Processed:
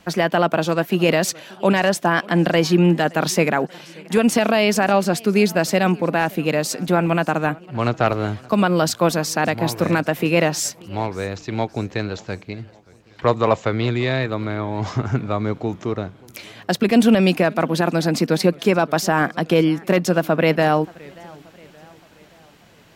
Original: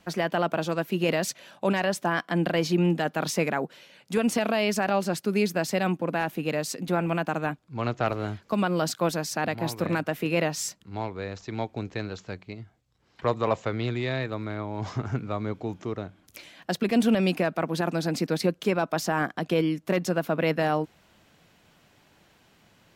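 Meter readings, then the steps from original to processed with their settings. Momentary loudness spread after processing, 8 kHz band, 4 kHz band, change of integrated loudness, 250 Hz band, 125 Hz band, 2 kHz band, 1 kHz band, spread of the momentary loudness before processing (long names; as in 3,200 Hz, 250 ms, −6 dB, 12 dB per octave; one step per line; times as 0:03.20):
10 LU, +8.0 dB, +8.0 dB, +8.0 dB, +8.0 dB, +8.0 dB, +8.0 dB, +8.0 dB, 9 LU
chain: feedback echo with a swinging delay time 577 ms, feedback 51%, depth 184 cents, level −24 dB
level +8 dB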